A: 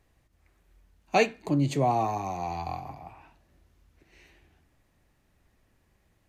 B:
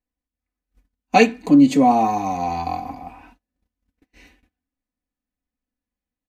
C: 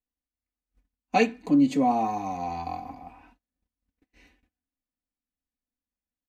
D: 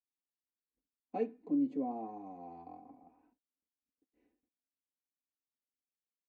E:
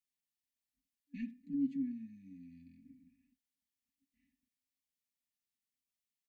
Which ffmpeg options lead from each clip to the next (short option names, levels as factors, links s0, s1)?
-af "agate=range=0.0316:threshold=0.00141:ratio=16:detection=peak,equalizer=f=260:t=o:w=0.45:g=8,aecho=1:1:4:0.81,volume=1.88"
-af "highshelf=f=6800:g=-4.5,volume=0.398"
-af "bandpass=f=370:t=q:w=1.8:csg=0,volume=0.376"
-filter_complex "[0:a]asplit=2[s0][s1];[s1]adelay=80,highpass=300,lowpass=3400,asoftclip=type=hard:threshold=0.0266,volume=0.0631[s2];[s0][s2]amix=inputs=2:normalize=0,asoftclip=type=tanh:threshold=0.0562,afftfilt=real='re*(1-between(b*sr/4096,280,1700))':imag='im*(1-between(b*sr/4096,280,1700))':win_size=4096:overlap=0.75,volume=1.26"